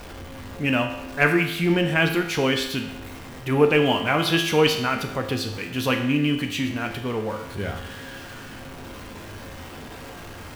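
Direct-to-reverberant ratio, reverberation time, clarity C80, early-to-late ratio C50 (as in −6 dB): 3.0 dB, 0.90 s, 9.5 dB, 7.0 dB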